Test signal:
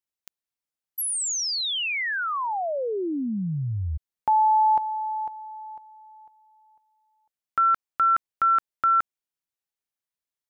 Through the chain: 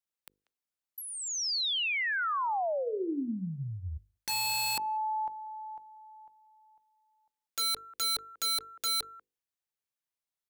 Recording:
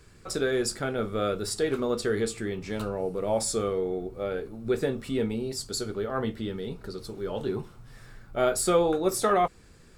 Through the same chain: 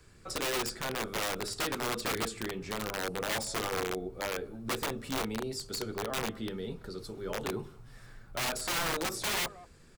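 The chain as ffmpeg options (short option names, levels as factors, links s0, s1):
-filter_complex "[0:a]acrossover=split=290|630|6100[s0][s1][s2][s3];[s0]acompressor=threshold=0.0251:ratio=8[s4];[s1]acompressor=threshold=0.0282:ratio=5[s5];[s2]acompressor=threshold=0.0631:ratio=8[s6];[s3]acompressor=threshold=0.00794:ratio=4[s7];[s4][s5][s6][s7]amix=inputs=4:normalize=0,asplit=2[s8][s9];[s9]adelay=190,highpass=300,lowpass=3400,asoftclip=type=hard:threshold=0.0794,volume=0.0794[s10];[s8][s10]amix=inputs=2:normalize=0,aeval=exprs='(mod(15*val(0)+1,2)-1)/15':c=same,bandreject=f=50:t=h:w=6,bandreject=f=100:t=h:w=6,bandreject=f=150:t=h:w=6,bandreject=f=200:t=h:w=6,bandreject=f=250:t=h:w=6,bandreject=f=300:t=h:w=6,bandreject=f=350:t=h:w=6,bandreject=f=400:t=h:w=6,bandreject=f=450:t=h:w=6,bandreject=f=500:t=h:w=6,volume=0.708"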